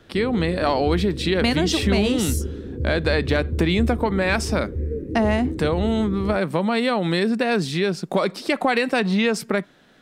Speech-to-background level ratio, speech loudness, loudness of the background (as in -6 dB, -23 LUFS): 7.5 dB, -22.0 LUFS, -29.5 LUFS